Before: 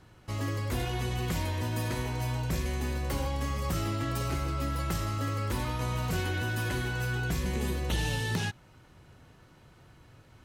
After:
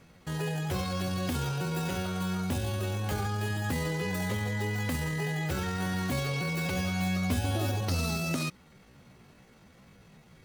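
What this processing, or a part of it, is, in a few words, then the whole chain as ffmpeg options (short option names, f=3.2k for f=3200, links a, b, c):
chipmunk voice: -filter_complex "[0:a]asetrate=66075,aresample=44100,atempo=0.66742,asettb=1/sr,asplit=3[a][b][c];[a]atrim=end=6.754[d];[b]atrim=start=6.75:end=7.81,asetpts=PTS-STARTPTS,afade=t=in:d=0.004:c=qsin,afade=t=out:st=1.056:d=0.004:c=qsin,asplit=2[e][f];[f]adelay=12,volume=-3dB[g];[e][g]amix=inputs=2:normalize=0,atrim=end_sample=46746[h];[c]atrim=start=7.806[i];[d][h]acrossfade=d=0.004:c1=hsin:c2=qsin[j];[j][i]acrossfade=d=0.004:c1=qsin:c2=hsin"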